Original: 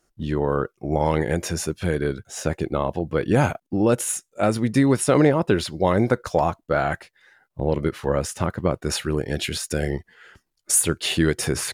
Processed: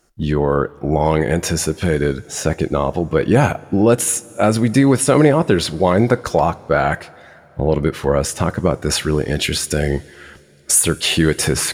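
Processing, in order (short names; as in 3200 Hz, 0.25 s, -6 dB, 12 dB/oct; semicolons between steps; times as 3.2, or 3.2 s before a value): in parallel at +0.5 dB: limiter -15.5 dBFS, peak gain reduction 9 dB; on the sum: two-slope reverb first 0.23 s, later 3.3 s, from -18 dB, DRR 14.5 dB; gain +1.5 dB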